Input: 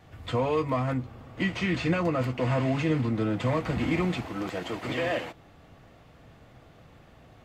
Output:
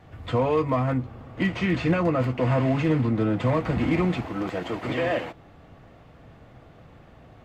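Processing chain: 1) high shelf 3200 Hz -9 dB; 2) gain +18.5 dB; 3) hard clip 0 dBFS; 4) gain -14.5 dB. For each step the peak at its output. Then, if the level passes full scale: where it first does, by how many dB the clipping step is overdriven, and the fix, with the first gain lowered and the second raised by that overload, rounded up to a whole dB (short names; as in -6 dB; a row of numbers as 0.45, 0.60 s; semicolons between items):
-15.5, +3.0, 0.0, -14.5 dBFS; step 2, 3.0 dB; step 2 +15.5 dB, step 4 -11.5 dB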